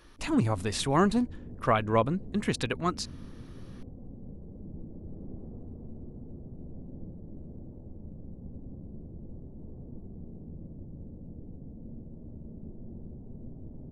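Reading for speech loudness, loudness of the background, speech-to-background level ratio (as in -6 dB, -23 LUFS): -28.5 LUFS, -46.0 LUFS, 17.5 dB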